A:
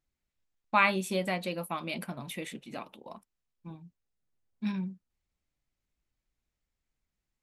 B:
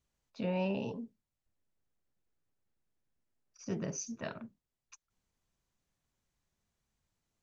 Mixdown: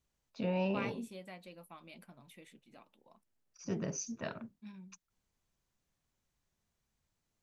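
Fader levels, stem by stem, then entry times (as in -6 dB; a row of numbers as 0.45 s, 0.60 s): -18.0 dB, 0.0 dB; 0.00 s, 0.00 s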